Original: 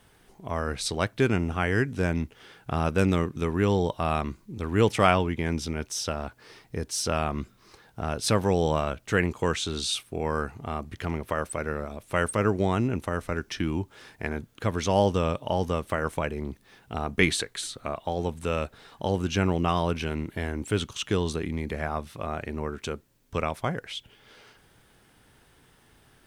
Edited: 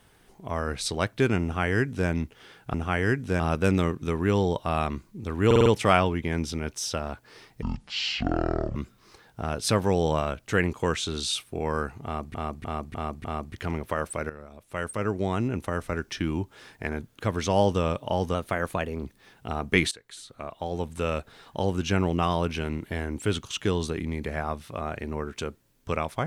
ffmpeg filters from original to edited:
ffmpeg -i in.wav -filter_complex "[0:a]asplit=17[link_01][link_02][link_03][link_04][link_05][link_06][link_07][link_08][link_09][link_10][link_11][link_12][link_13][link_14][link_15][link_16][link_17];[link_01]atrim=end=2.742[link_18];[link_02]atrim=start=1.428:end=2.092[link_19];[link_03]atrim=start=2.738:end=4.852[link_20];[link_04]atrim=start=4.798:end=4.852[link_21];[link_05]atrim=start=4.798:end=4.852[link_22];[link_06]atrim=start=4.798:end=4.852[link_23];[link_07]atrim=start=4.798:end=6.764[link_24];[link_08]atrim=start=6.76:end=7.35,asetpts=PTS-STARTPTS,asetrate=22932,aresample=44100[link_25];[link_09]atrim=start=7.346:end=10.942[link_26];[link_10]atrim=start=10.638:end=10.942[link_27];[link_11]atrim=start=10.638:end=10.942[link_28];[link_12]atrim=start=10.638:end=10.942[link_29];[link_13]atrim=start=10.638:end=11.69,asetpts=PTS-STARTPTS,afade=type=out:start_time=1.048:duration=0.004:curve=hsin:silence=0.211349[link_30];[link_14]atrim=start=11.69:end=15.744,asetpts=PTS-STARTPTS,afade=type=in:duration=1.45:silence=0.211349[link_31];[link_15]atrim=start=15.74:end=16.48,asetpts=PTS-STARTPTS,asetrate=48069,aresample=44100,atrim=end_sample=29939,asetpts=PTS-STARTPTS[link_32];[link_16]atrim=start=16.476:end=17.37,asetpts=PTS-STARTPTS,afade=type=out:start_time=0.89:duration=0.004:curve=hsin:silence=0.105925[link_33];[link_17]atrim=start=17.37,asetpts=PTS-STARTPTS,afade=type=in:duration=1.06:silence=0.105925[link_34];[link_18][link_19]acrossfade=duration=0.004:curve1=hsin:curve2=hsin[link_35];[link_35][link_20]acrossfade=duration=0.004:curve1=hsin:curve2=hsin[link_36];[link_36][link_21]acrossfade=duration=0.004:curve1=hsin:curve2=hsin[link_37];[link_37][link_22]acrossfade=duration=0.004:curve1=hsin:curve2=hsin[link_38];[link_38][link_23]acrossfade=duration=0.004:curve1=hsin:curve2=hsin[link_39];[link_39][link_24]acrossfade=duration=0.004:curve1=hsin:curve2=hsin[link_40];[link_40][link_25]acrossfade=duration=0.004:curve1=hsin:curve2=hsin[link_41];[link_41][link_26]acrossfade=duration=0.004:curve1=hsin:curve2=hsin[link_42];[link_42][link_27]acrossfade=duration=0.004:curve1=hsin:curve2=hsin[link_43];[link_43][link_28]acrossfade=duration=0.004:curve1=hsin:curve2=hsin[link_44];[link_44][link_29]acrossfade=duration=0.004:curve1=hsin:curve2=hsin[link_45];[link_30][link_31]concat=n=2:v=0:a=1[link_46];[link_45][link_46]acrossfade=duration=0.004:curve1=hsin:curve2=hsin[link_47];[link_47][link_32]acrossfade=duration=0.004:curve1=hsin:curve2=hsin[link_48];[link_33][link_34]concat=n=2:v=0:a=1[link_49];[link_48][link_49]acrossfade=duration=0.004:curve1=hsin:curve2=hsin" out.wav

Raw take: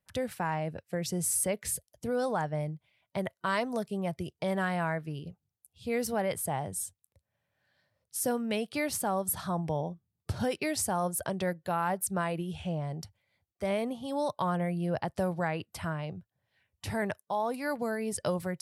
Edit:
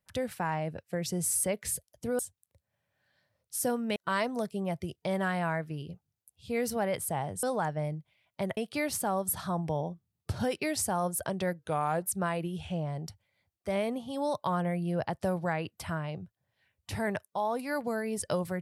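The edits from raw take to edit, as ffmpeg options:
ffmpeg -i in.wav -filter_complex "[0:a]asplit=7[link_01][link_02][link_03][link_04][link_05][link_06][link_07];[link_01]atrim=end=2.192[link_08];[link_02]atrim=start=6.798:end=8.572[link_09];[link_03]atrim=start=3.328:end=6.802[link_10];[link_04]atrim=start=2.188:end=3.332[link_11];[link_05]atrim=start=8.568:end=11.594[link_12];[link_06]atrim=start=11.59:end=11.97,asetpts=PTS-STARTPTS,asetrate=38808,aresample=44100,atrim=end_sample=19043,asetpts=PTS-STARTPTS[link_13];[link_07]atrim=start=11.966[link_14];[link_08][link_09]acrossfade=duration=0.004:curve1=hsin:curve2=hsin[link_15];[link_15][link_10]acrossfade=duration=0.004:curve1=hsin:curve2=hsin[link_16];[link_16][link_11]acrossfade=duration=0.004:curve1=hsin:curve2=hsin[link_17];[link_17][link_12]acrossfade=duration=0.004:curve1=hsin:curve2=hsin[link_18];[link_18][link_13]acrossfade=duration=0.004:curve1=hsin:curve2=hsin[link_19];[link_19][link_14]acrossfade=duration=0.004:curve1=hsin:curve2=hsin" out.wav

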